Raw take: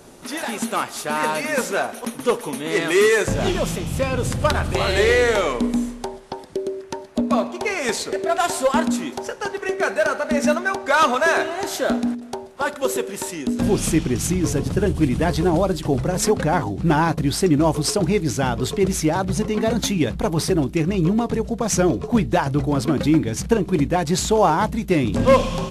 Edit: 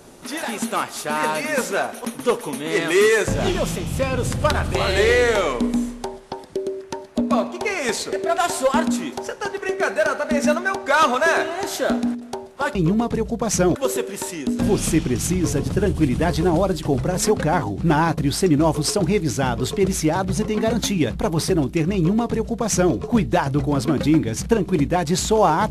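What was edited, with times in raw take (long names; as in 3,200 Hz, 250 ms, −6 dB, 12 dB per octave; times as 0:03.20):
0:20.94–0:21.94: duplicate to 0:12.75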